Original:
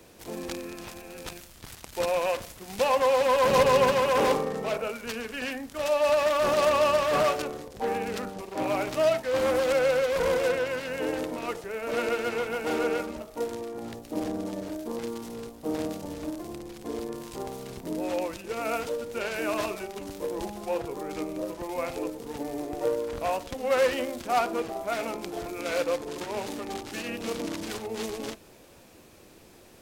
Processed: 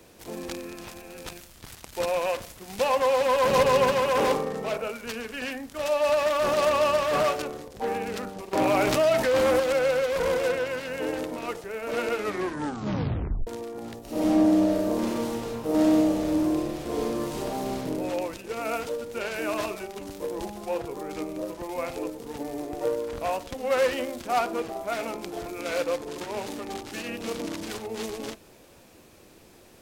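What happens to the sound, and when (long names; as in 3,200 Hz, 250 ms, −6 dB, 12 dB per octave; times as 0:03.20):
0:08.53–0:09.60: envelope flattener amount 70%
0:12.13: tape stop 1.34 s
0:13.99–0:17.77: thrown reverb, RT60 1.6 s, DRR −7 dB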